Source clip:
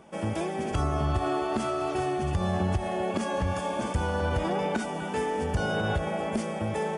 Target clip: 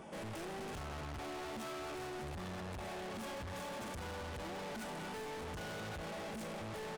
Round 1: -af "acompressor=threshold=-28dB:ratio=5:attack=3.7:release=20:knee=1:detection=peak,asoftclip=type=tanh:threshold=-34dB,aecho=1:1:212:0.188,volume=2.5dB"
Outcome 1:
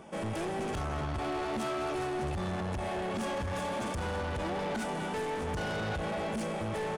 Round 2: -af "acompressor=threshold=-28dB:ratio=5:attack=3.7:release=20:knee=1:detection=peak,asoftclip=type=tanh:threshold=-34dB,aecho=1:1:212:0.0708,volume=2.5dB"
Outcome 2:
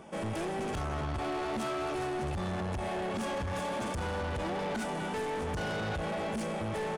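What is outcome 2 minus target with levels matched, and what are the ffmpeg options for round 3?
soft clipping: distortion −5 dB
-af "acompressor=threshold=-28dB:ratio=5:attack=3.7:release=20:knee=1:detection=peak,asoftclip=type=tanh:threshold=-45.5dB,aecho=1:1:212:0.0708,volume=2.5dB"

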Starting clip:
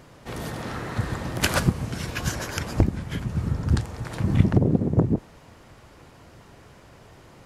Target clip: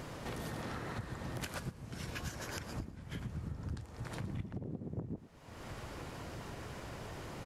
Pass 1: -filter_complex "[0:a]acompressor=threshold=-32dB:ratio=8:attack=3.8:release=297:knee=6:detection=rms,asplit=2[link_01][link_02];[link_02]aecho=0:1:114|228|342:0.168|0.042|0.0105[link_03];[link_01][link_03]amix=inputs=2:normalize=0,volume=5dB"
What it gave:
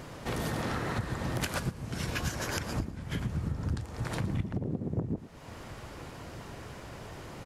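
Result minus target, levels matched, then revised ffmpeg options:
downward compressor: peak gain reduction −9 dB
-filter_complex "[0:a]acompressor=threshold=-42dB:ratio=8:attack=3.8:release=297:knee=6:detection=rms,asplit=2[link_01][link_02];[link_02]aecho=0:1:114|228|342:0.168|0.042|0.0105[link_03];[link_01][link_03]amix=inputs=2:normalize=0,volume=5dB"

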